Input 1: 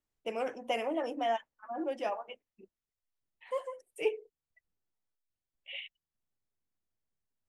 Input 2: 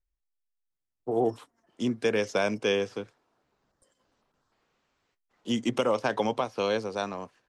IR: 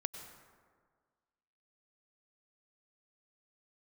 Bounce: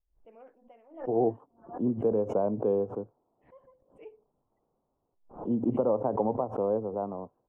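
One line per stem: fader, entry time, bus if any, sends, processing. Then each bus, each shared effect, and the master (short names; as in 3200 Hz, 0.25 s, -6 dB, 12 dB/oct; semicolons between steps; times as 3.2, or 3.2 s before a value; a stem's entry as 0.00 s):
-18.0 dB, 0.00 s, no send, LPF 1300 Hz 12 dB/oct; auto duck -11 dB, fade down 0.60 s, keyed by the second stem
0.0 dB, 0.00 s, no send, inverse Chebyshev low-pass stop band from 1800 Hz, stop band 40 dB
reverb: off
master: backwards sustainer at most 140 dB/s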